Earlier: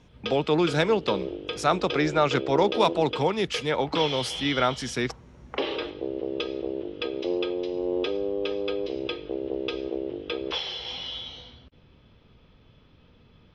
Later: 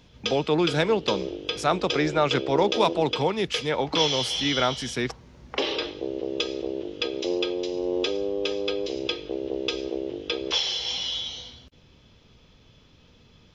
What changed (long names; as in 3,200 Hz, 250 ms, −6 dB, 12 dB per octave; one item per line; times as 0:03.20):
background: remove high-frequency loss of the air 260 metres
master: add parametric band 1,300 Hz −2 dB 0.29 octaves